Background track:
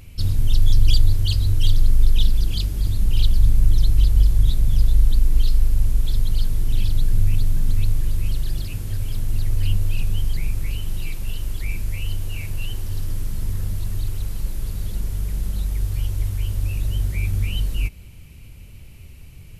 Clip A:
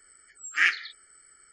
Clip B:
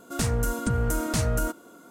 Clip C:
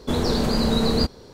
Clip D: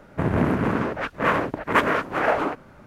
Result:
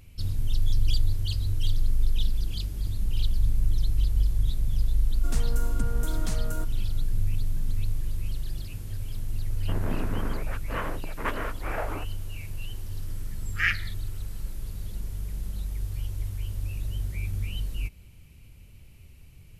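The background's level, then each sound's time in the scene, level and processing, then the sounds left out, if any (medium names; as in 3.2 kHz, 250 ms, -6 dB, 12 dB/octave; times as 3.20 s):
background track -8.5 dB
5.13 s: add B -9 dB
9.50 s: add D -12 dB
13.02 s: add A -3 dB + low-pass 5.6 kHz
not used: C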